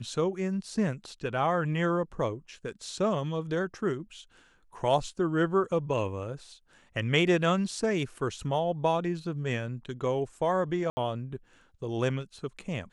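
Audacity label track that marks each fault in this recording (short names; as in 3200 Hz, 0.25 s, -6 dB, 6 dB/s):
10.900000	10.970000	gap 70 ms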